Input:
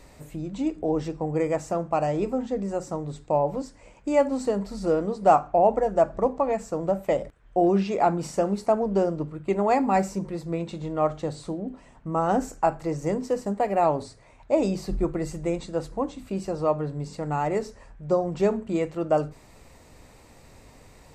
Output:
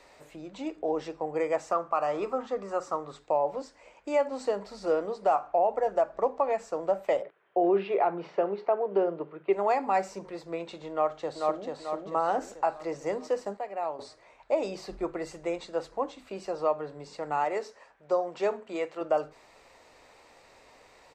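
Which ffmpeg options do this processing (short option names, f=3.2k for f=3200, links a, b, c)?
-filter_complex "[0:a]asettb=1/sr,asplit=3[a][b][c];[a]atrim=end=1.714[d];[b]atrim=start=1.71:end=3.19,asetpts=PTS-STARTPTS,afade=t=in:d=0.004:c=qsin,afade=t=out:st=1.476:d=0.004:c=qsin,equalizer=f=1.2k:t=o:w=0.34:g=14.5[e];[c]atrim=start=3.186[f];[d][e]acrossfade=d=0.004:c1=hsin:c2=qsin[g];[g][f]acrossfade=d=0.004:c1=qsin:c2=hsin,asplit=3[h][i][j];[h]afade=t=out:st=7.21:d=0.02[k];[i]highpass=f=160:w=0.5412,highpass=f=160:w=1.3066,equalizer=f=170:t=q:w=4:g=7,equalizer=f=240:t=q:w=4:g=-9,equalizer=f=390:t=q:w=4:g=8,lowpass=f=3.3k:w=0.5412,lowpass=f=3.3k:w=1.3066,afade=t=in:st=7.21:d=0.02,afade=t=out:st=9.52:d=0.02[l];[j]afade=t=in:st=9.52:d=0.02[m];[k][l][m]amix=inputs=3:normalize=0,asplit=2[n][o];[o]afade=t=in:st=10.91:d=0.01,afade=t=out:st=11.65:d=0.01,aecho=0:1:440|880|1320|1760|2200|2640|3080:0.707946|0.353973|0.176986|0.0884932|0.0442466|0.0221233|0.0110617[p];[n][p]amix=inputs=2:normalize=0,asettb=1/sr,asplit=3[q][r][s];[q]atrim=end=17.444[t];[r]atrim=start=17.44:end=19.01,asetpts=PTS-STARTPTS,afade=t=in:d=0.004:c=qsin,afade=t=out:st=1.566:d=0.004:c=qsin,highpass=f=290:p=1[u];[s]atrim=start=19.006[v];[t][u]acrossfade=d=0.004:c1=hsin:c2=qsin[w];[w][v]acrossfade=d=0.004:c1=qsin:c2=hsin,asplit=3[x][y][z];[x]atrim=end=13.572[aa];[y]atrim=start=13.568:end=13.992,asetpts=PTS-STARTPTS,volume=-10dB[ab];[z]atrim=start=13.988[ac];[aa][ab]acrossfade=d=0.004:c1=hsin:c2=hsin[ad];[ad][ac]acrossfade=d=0.004:c1=hsin:c2=hsin,acrossover=split=390 6000:gain=0.112 1 0.224[ae][af][ag];[ae][af][ag]amix=inputs=3:normalize=0,alimiter=limit=-15.5dB:level=0:latency=1:release=225"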